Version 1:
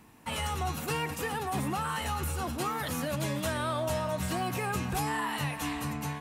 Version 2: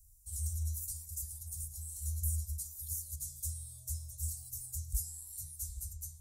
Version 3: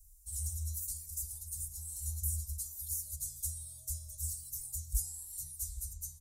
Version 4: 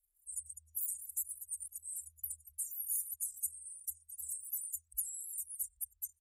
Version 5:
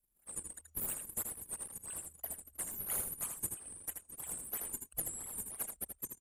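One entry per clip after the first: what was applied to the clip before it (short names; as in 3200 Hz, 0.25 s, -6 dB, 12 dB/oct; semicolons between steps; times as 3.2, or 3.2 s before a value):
inverse Chebyshev band-stop 170–2900 Hz, stop band 50 dB; low shelf 110 Hz +7 dB; gain +2.5 dB
comb 4.7 ms, depth 77%
formant sharpening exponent 3; pre-emphasis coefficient 0.97
in parallel at -11 dB: decimation with a swept rate 39×, swing 160% 3 Hz; on the sum: echo 80 ms -6 dB; gain -1.5 dB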